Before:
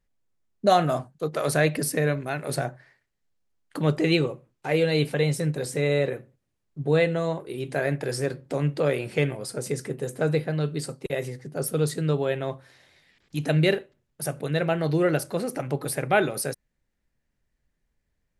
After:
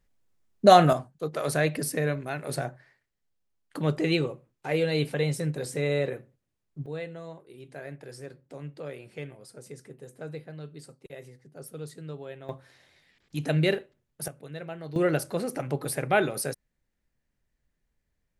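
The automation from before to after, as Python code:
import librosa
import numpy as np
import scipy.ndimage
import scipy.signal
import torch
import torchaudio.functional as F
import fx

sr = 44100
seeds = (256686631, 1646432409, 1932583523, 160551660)

y = fx.gain(x, sr, db=fx.steps((0.0, 4.0), (0.93, -3.5), (6.86, -15.0), (12.49, -3.0), (14.28, -14.0), (14.96, -2.0)))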